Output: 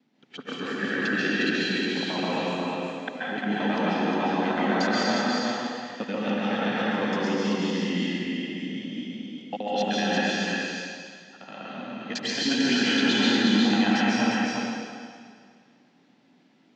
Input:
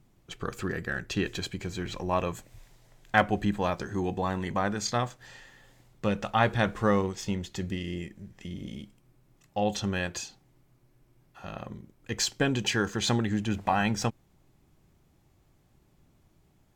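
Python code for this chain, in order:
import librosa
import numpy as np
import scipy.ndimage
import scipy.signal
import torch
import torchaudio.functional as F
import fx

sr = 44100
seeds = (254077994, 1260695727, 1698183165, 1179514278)

p1 = fx.local_reverse(x, sr, ms=75.0)
p2 = fx.low_shelf(p1, sr, hz=430.0, db=-3.0)
p3 = fx.over_compress(p2, sr, threshold_db=-28.0, ratio=-0.5)
p4 = fx.cabinet(p3, sr, low_hz=210.0, low_slope=24, high_hz=4900.0, hz=(250.0, 370.0, 630.0, 1100.0), db=(8, -6, -3, -9))
p5 = p4 + fx.echo_single(p4, sr, ms=357, db=-3.0, dry=0)
y = fx.rev_plate(p5, sr, seeds[0], rt60_s=2.0, hf_ratio=0.95, predelay_ms=120, drr_db=-7.0)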